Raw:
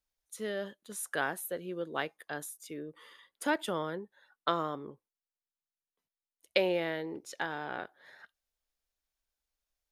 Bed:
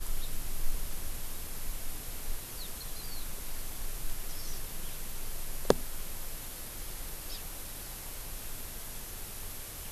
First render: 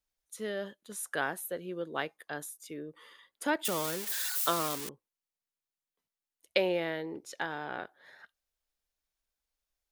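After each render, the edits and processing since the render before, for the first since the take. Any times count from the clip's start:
0:03.65–0:04.89: spike at every zero crossing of −23 dBFS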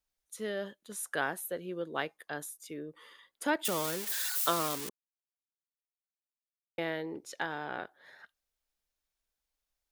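0:04.90–0:06.78: silence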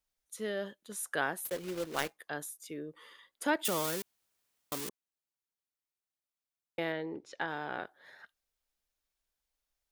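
0:01.45–0:02.19: one scale factor per block 3 bits
0:04.02–0:04.72: fill with room tone
0:06.92–0:07.48: high-frequency loss of the air 120 metres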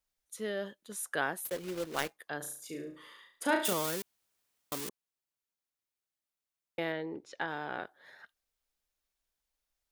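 0:02.37–0:03.73: flutter between parallel walls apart 6.1 metres, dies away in 0.44 s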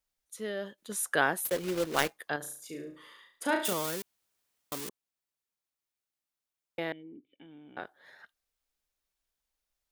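0:00.78–0:02.36: clip gain +6 dB
0:06.92–0:07.77: formant resonators in series i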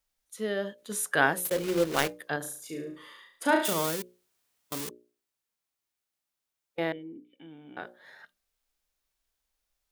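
mains-hum notches 60/120/180/240/300/360/420/480/540/600 Hz
harmonic and percussive parts rebalanced harmonic +6 dB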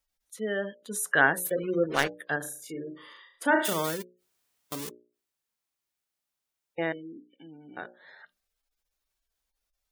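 gate on every frequency bin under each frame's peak −25 dB strong
dynamic equaliser 1,700 Hz, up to +5 dB, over −44 dBFS, Q 3.3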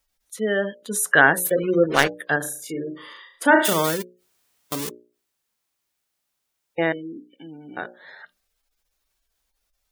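level +8 dB
brickwall limiter −1 dBFS, peak gain reduction 2 dB

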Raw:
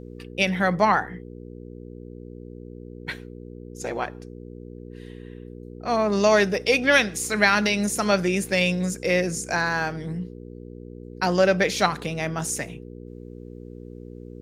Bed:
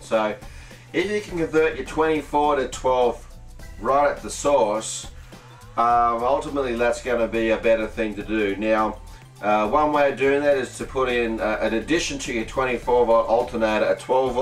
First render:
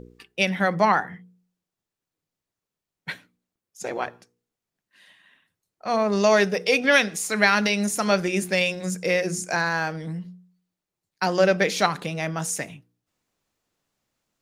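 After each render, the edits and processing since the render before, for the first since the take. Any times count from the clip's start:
hum removal 60 Hz, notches 8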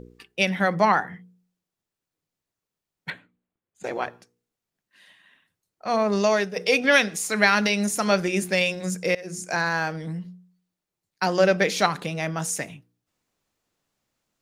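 0:03.10–0:03.84: moving average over 8 samples
0:06.13–0:06.56: fade out, to −10 dB
0:09.15–0:09.75: fade in equal-power, from −23 dB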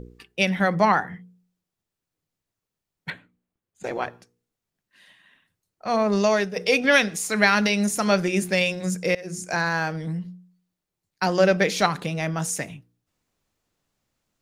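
low-shelf EQ 130 Hz +7.5 dB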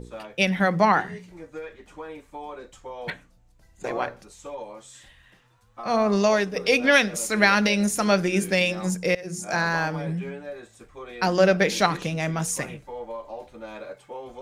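mix in bed −18 dB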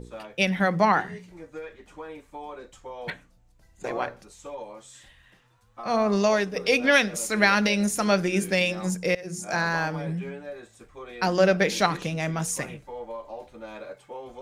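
level −1.5 dB

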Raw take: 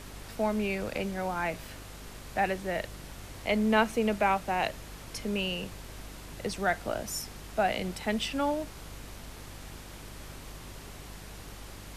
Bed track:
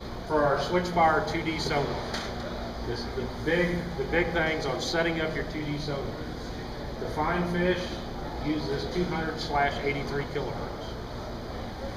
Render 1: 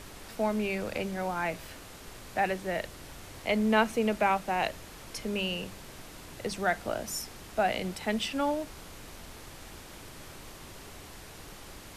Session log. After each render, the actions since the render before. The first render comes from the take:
hum removal 50 Hz, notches 5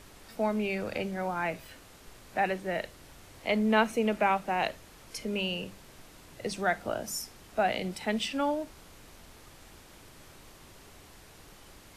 noise reduction from a noise print 6 dB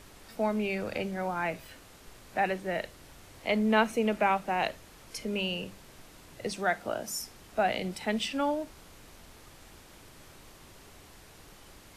0:06.51–0:07.20: low-shelf EQ 110 Hz −8.5 dB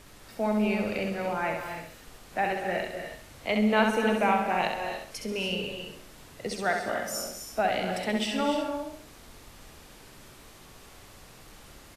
repeating echo 66 ms, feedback 35%, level −5 dB
reverb whose tail is shaped and stops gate 320 ms rising, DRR 5.5 dB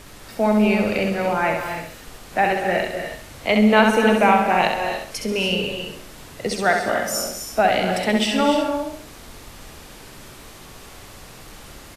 level +9 dB
brickwall limiter −3 dBFS, peak gain reduction 2 dB

